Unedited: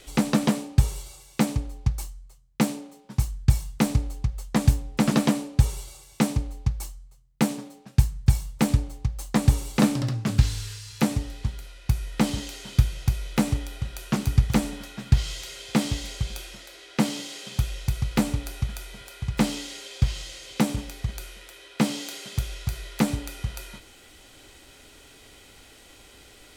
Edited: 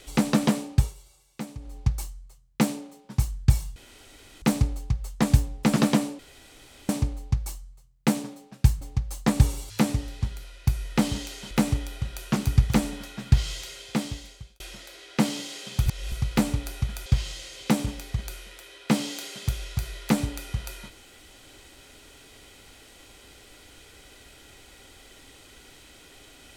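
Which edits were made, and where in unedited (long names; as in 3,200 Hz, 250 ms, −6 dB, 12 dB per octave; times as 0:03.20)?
0:00.74–0:01.79: duck −13 dB, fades 0.20 s
0:03.76: splice in room tone 0.66 s
0:05.53–0:06.23: fill with room tone
0:08.15–0:08.89: remove
0:09.78–0:10.92: remove
0:12.73–0:13.31: remove
0:15.36–0:16.40: fade out
0:17.66–0:17.92: reverse
0:18.86–0:19.96: remove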